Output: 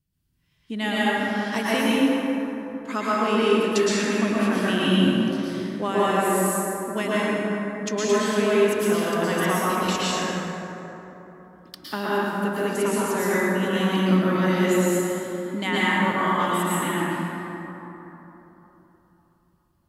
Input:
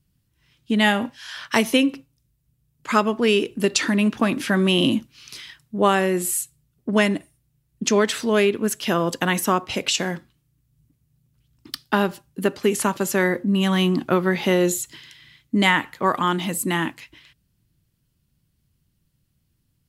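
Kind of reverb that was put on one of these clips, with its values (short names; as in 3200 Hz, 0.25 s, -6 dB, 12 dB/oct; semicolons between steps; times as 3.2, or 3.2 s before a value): plate-style reverb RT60 3.6 s, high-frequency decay 0.4×, pre-delay 0.1 s, DRR -9 dB; gain -10.5 dB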